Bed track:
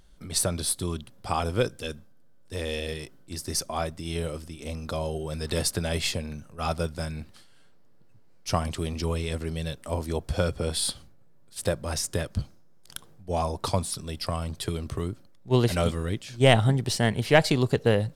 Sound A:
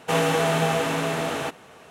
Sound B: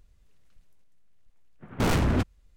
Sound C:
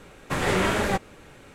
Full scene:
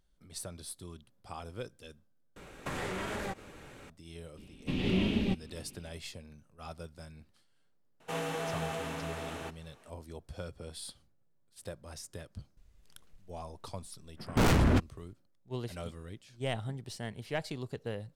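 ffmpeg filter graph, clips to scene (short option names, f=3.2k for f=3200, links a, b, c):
-filter_complex "[3:a]asplit=2[a][b];[0:a]volume=-16.5dB[c];[a]acompressor=threshold=-31dB:ratio=6:attack=3.2:release=140:knee=1:detection=peak[d];[b]firequalizer=gain_entry='entry(150,0);entry(220,8);entry(510,-12);entry(1500,-22);entry(2700,2);entry(7500,-21);entry(13000,-18)':delay=0.05:min_phase=1[e];[c]asplit=2[f][g];[f]atrim=end=2.364[h];[d]atrim=end=1.54,asetpts=PTS-STARTPTS,volume=-2.5dB[i];[g]atrim=start=3.896[j];[e]atrim=end=1.54,asetpts=PTS-STARTPTS,volume=-5dB,afade=t=in:d=0.004:c=hsin,afade=t=out:st=1.536:d=0.004:c=hsin,adelay=192717S[k];[1:a]atrim=end=1.9,asetpts=PTS-STARTPTS,volume=-14dB,afade=t=in:d=0.004:c=hsin,afade=t=out:st=1.896:d=0.004:c=hsin,adelay=8000[l];[2:a]atrim=end=2.56,asetpts=PTS-STARTPTS,volume=-1dB,afade=t=in:d=0.004:c=hsin,afade=t=out:st=2.556:d=0.004:c=hsin,adelay=12570[m];[h][i]acrossfade=d=0.004:c1=hsin:c2=hsin[n];[n][j]acrossfade=d=0.004:c1=hsin:c2=hsin[o];[o][k][l][m]amix=inputs=4:normalize=0"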